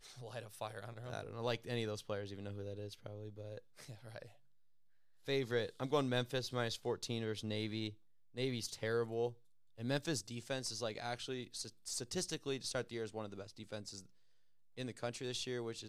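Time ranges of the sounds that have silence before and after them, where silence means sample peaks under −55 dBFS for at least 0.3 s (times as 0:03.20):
0:05.25–0:07.94
0:08.34–0:09.34
0:09.78–0:14.06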